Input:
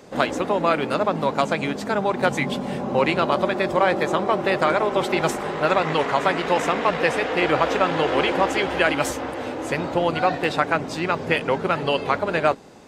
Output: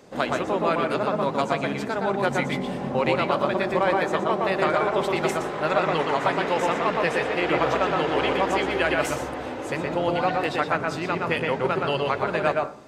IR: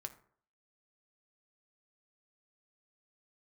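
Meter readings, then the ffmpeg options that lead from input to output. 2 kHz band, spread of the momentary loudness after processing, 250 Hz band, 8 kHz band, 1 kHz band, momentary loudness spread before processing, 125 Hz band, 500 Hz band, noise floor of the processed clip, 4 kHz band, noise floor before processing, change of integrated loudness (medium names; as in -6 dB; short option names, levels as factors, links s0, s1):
-2.5 dB, 5 LU, -2.5 dB, -4.0 dB, -2.0 dB, 5 LU, -1.5 dB, -2.0 dB, -32 dBFS, -3.5 dB, -31 dBFS, -2.0 dB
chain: -filter_complex "[0:a]asplit=2[s0][s1];[s1]highshelf=f=4600:g=-10[s2];[1:a]atrim=start_sample=2205,adelay=119[s3];[s2][s3]afir=irnorm=-1:irlink=0,volume=1.33[s4];[s0][s4]amix=inputs=2:normalize=0,volume=0.596"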